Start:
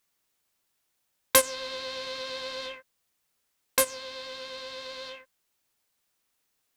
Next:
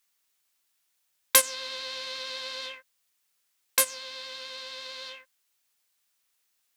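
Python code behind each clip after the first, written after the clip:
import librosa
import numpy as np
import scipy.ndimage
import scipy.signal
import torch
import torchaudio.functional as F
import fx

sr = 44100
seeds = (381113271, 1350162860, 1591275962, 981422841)

y = fx.tilt_shelf(x, sr, db=-6.0, hz=880.0)
y = F.gain(torch.from_numpy(y), -3.5).numpy()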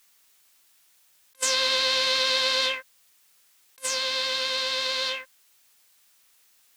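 y = fx.over_compress(x, sr, threshold_db=-35.0, ratio=-0.5)
y = F.gain(torch.from_numpy(y), 9.0).numpy()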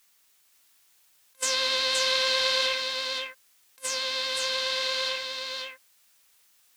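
y = x + 10.0 ** (-4.5 / 20.0) * np.pad(x, (int(522 * sr / 1000.0), 0))[:len(x)]
y = F.gain(torch.from_numpy(y), -2.5).numpy()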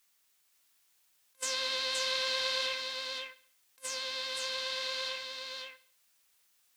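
y = fx.echo_feedback(x, sr, ms=68, feedback_pct=46, wet_db=-18.0)
y = F.gain(torch.from_numpy(y), -7.5).numpy()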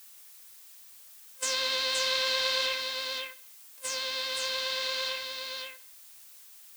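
y = fx.dmg_noise_colour(x, sr, seeds[0], colour='blue', level_db=-56.0)
y = F.gain(torch.from_numpy(y), 4.0).numpy()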